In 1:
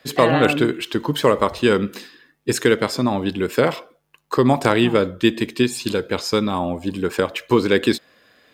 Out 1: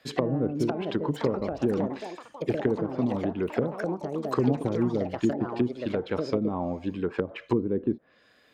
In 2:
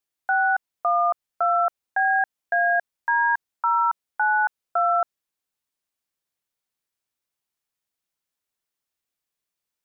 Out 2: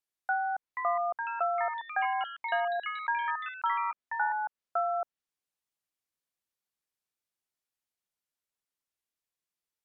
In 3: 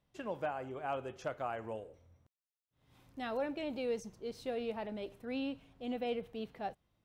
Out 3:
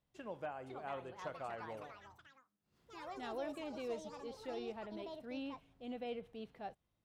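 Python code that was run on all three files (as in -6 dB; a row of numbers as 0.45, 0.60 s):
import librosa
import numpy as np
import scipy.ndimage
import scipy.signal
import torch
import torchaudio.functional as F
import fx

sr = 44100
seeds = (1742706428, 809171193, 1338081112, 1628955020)

y = fx.env_lowpass_down(x, sr, base_hz=360.0, full_db=-14.5)
y = fx.echo_pitch(y, sr, ms=553, semitones=5, count=3, db_per_echo=-6.0)
y = F.gain(torch.from_numpy(y), -6.5).numpy()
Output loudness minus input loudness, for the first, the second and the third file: -9.0, -9.0, -6.0 LU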